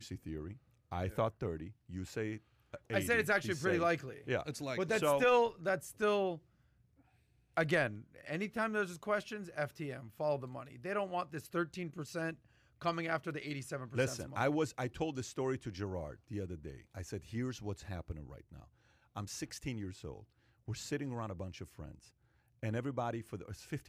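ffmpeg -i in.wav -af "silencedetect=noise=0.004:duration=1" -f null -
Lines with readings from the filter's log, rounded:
silence_start: 6.38
silence_end: 7.57 | silence_duration: 1.19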